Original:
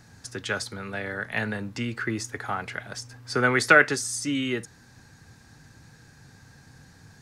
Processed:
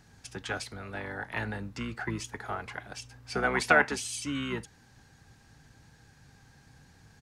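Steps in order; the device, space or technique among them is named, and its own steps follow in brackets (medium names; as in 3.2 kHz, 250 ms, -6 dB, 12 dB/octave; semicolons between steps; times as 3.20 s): octave pedal (harmony voices -12 st -6 dB); trim -6.5 dB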